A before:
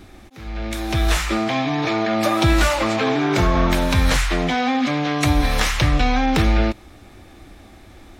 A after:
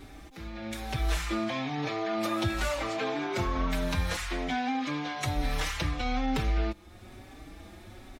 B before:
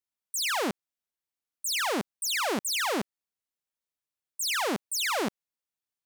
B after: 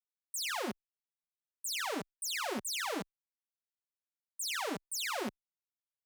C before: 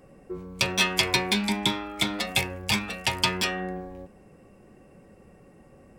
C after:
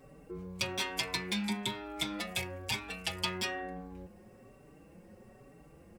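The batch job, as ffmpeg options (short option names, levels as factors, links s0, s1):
-filter_complex "[0:a]acrusher=bits=11:mix=0:aa=0.000001,acompressor=threshold=0.01:ratio=1.5,asplit=2[s0][s1];[s1]adelay=4.8,afreqshift=1.1[s2];[s0][s2]amix=inputs=2:normalize=1"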